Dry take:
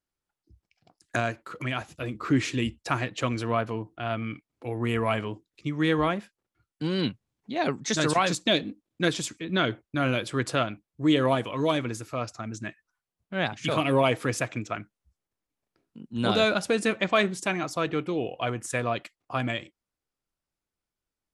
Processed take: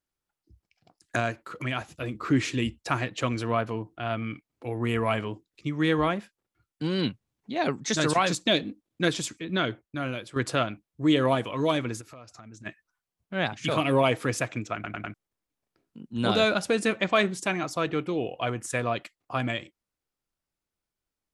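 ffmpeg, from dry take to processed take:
-filter_complex "[0:a]asplit=3[a][b][c];[a]afade=t=out:st=12:d=0.02[d];[b]acompressor=threshold=-45dB:ratio=4:attack=3.2:release=140:knee=1:detection=peak,afade=t=in:st=12:d=0.02,afade=t=out:st=12.65:d=0.02[e];[c]afade=t=in:st=12.65:d=0.02[f];[d][e][f]amix=inputs=3:normalize=0,asplit=6[g][h][i][j][k][l];[g]atrim=end=10.36,asetpts=PTS-STARTPTS,afade=t=out:st=9.34:d=1.02:silence=0.298538[m];[h]atrim=start=10.36:end=14.842,asetpts=PTS-STARTPTS,afade=t=in:d=0.004:c=hsin:silence=0.298538[n];[i]atrim=start=14.738:end=14.842[o];[j]atrim=start=14.738:end=14.842[p];[k]atrim=start=14.738:end=14.842[q];[l]atrim=start=15.138[r];[m][n]concat=n=2:v=0:a=1[s];[s][o]acrossfade=d=0.004:c1=hsin:c2=hsin[t];[t][p]acrossfade=d=0.004:c1=hsin:c2=hsin[u];[u][q]acrossfade=d=0.004:c1=hsin:c2=hsin[v];[v][r]acrossfade=d=0.004:c1=hsin:c2=hsin"

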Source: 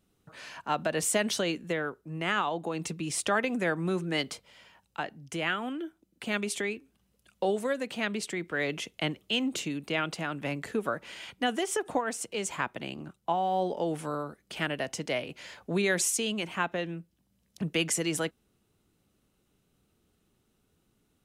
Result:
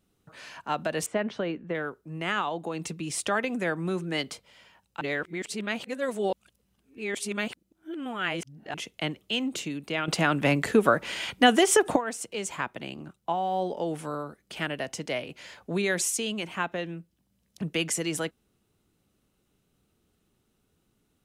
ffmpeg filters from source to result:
-filter_complex "[0:a]asettb=1/sr,asplit=3[a][b][c];[a]atrim=end=1.064[d];[b]atrim=start=1.06:end=1.75,asetpts=PTS-STARTPTS,afade=t=in:d=0.004:c=qsin,afade=t=out:st=0.686:d=0.004:c=qsin,lowpass=1.8k[e];[c]atrim=start=1.746[f];[d][e]acrossfade=d=0.004:c1=hsin:c2=qsin[g];[g][f]acrossfade=d=0.004:c1=qsin:c2=hsin,asplit=5[h][i][j][k][l];[h]atrim=end=5.012[m];[i]atrim=start=5.008:end=8.742,asetpts=PTS-STARTPTS,areverse[n];[j]atrim=start=8.738:end=10.082[o];[k]atrim=start=10.078:end=11.962,asetpts=PTS-STARTPTS,volume=10dB[p];[l]atrim=start=11.958[q];[m][n]acrossfade=d=0.004:c1=hsin:c2=hsin[r];[r][o]acrossfade=d=0.004:c1=hsin:c2=hsin[s];[s][p]acrossfade=d=0.004:c1=hsin:c2=hsin[t];[t][q]acrossfade=d=0.004:c1=hsin:c2=hsin"

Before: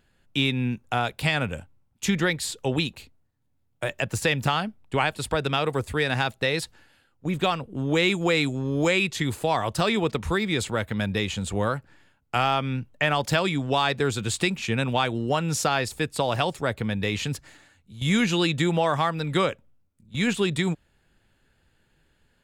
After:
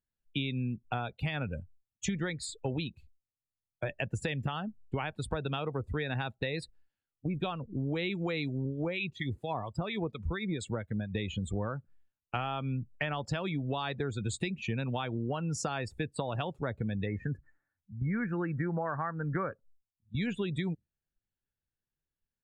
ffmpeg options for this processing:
-filter_complex "[0:a]asettb=1/sr,asplit=3[a][b][c];[a]atrim=end=8.654[d];[b]atrim=start=8.65:end=11.15,asetpts=PTS-STARTPTS,afade=t=in:d=0.004:c=qsin,afade=t=out:st=2.496:d=0.004:c=qsin,acrossover=split=1300[e][f];[e]aeval=exprs='val(0)*(1-0.7/2+0.7/2*cos(2*PI*4.3*n/s))':c=same[g];[f]aeval=exprs='val(0)*(1-0.7/2-0.7/2*cos(2*PI*4.3*n/s))':c=same[h];[g][h]amix=inputs=2:normalize=0[i];[c]atrim=start=11.146[j];[d][i]acrossfade=d=0.004:c1=hsin:c2=qsin[k];[k][j]acrossfade=d=0.004:c1=qsin:c2=hsin,asplit=3[l][m][n];[l]afade=t=out:st=17.05:d=0.02[o];[m]highshelf=f=2.3k:t=q:w=3:g=-12.5,afade=t=in:st=17.05:d=0.02,afade=t=out:st=19.51:d=0.02[p];[n]afade=t=in:st=19.51:d=0.02[q];[o][p][q]amix=inputs=3:normalize=0,lowshelf=f=230:g=6,afftdn=nr=28:nf=-31,acompressor=threshold=-26dB:ratio=6,volume=-4dB"

